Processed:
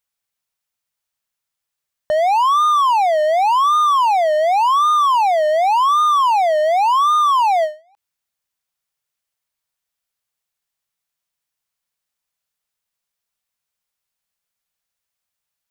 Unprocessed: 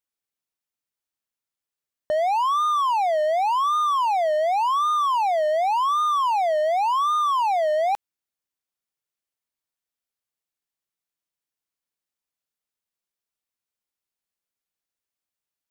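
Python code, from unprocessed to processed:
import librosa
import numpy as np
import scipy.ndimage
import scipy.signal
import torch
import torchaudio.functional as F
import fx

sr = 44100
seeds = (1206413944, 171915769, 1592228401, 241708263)

y = fx.peak_eq(x, sr, hz=320.0, db=-11.0, octaves=0.85)
y = fx.end_taper(y, sr, db_per_s=200.0)
y = y * librosa.db_to_amplitude(7.5)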